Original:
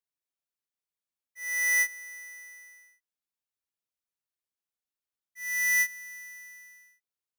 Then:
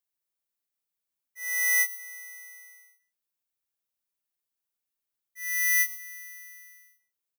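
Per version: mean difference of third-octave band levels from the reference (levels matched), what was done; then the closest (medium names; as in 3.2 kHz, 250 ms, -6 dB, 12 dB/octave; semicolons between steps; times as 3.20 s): 1.5 dB: treble shelf 11 kHz +10 dB; delay 126 ms -16.5 dB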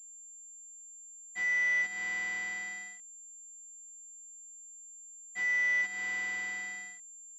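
12.0 dB: companding laws mixed up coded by mu; compression 8:1, threshold -34 dBFS, peak gain reduction 11 dB; class-D stage that switches slowly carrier 7.3 kHz; trim +6 dB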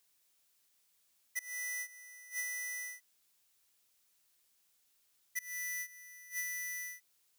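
7.0 dB: treble shelf 2.4 kHz +9.5 dB; inverted gate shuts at -32 dBFS, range -27 dB; compression 10:1, threshold -47 dBFS, peak gain reduction 9 dB; trim +11.5 dB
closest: first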